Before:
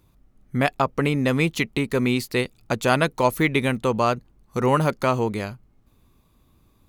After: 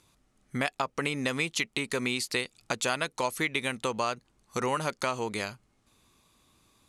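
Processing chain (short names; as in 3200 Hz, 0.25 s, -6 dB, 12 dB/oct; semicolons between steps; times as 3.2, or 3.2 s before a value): LPF 9600 Hz 24 dB/oct; tilt +3 dB/oct; compressor 3:1, threshold -28 dBFS, peak gain reduction 11.5 dB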